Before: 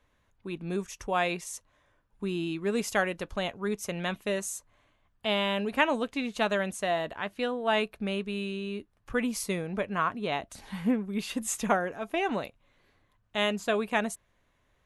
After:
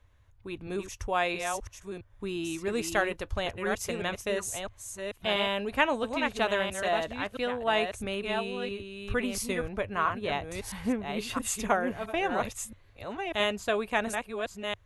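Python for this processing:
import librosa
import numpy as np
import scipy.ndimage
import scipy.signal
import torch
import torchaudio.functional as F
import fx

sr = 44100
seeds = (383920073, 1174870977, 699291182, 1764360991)

y = fx.reverse_delay(x, sr, ms=670, wet_db=-5.5)
y = fx.low_shelf_res(y, sr, hz=130.0, db=8.5, q=3.0)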